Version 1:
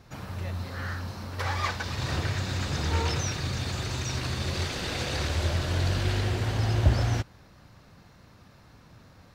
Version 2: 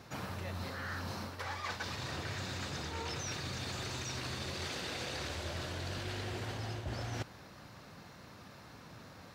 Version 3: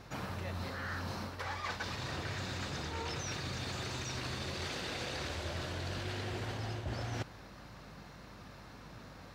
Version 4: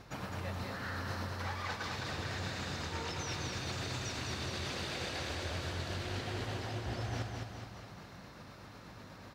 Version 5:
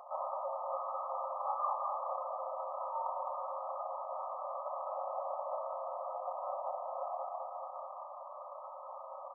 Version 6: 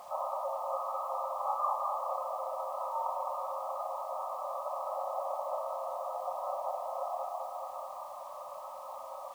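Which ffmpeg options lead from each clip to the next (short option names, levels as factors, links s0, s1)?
-af "highpass=f=190:p=1,areverse,acompressor=threshold=0.01:ratio=12,areverse,volume=1.5"
-af "highshelf=f=6300:g=-4.5,aeval=exprs='val(0)+0.00112*(sin(2*PI*50*n/s)+sin(2*PI*2*50*n/s)/2+sin(2*PI*3*50*n/s)/3+sin(2*PI*4*50*n/s)/4+sin(2*PI*5*50*n/s)/5)':c=same,volume=1.12"
-af "tremolo=f=8.1:d=0.32,aecho=1:1:209|418|627|836|1045|1254|1463|1672:0.631|0.353|0.198|0.111|0.0621|0.0347|0.0195|0.0109"
-af "acompressor=threshold=0.00891:ratio=2,aecho=1:1:32|63:0.562|0.531,afftfilt=real='re*between(b*sr/4096,520,1300)':imag='im*between(b*sr/4096,520,1300)':win_size=4096:overlap=0.75,volume=2.99"
-af "acrusher=bits=9:mix=0:aa=0.000001,volume=1.41"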